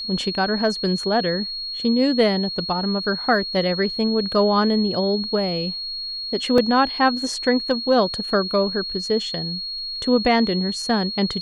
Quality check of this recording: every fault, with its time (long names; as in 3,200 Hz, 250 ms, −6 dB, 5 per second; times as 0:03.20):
whistle 4,300 Hz −27 dBFS
0:06.58: drop-out 2 ms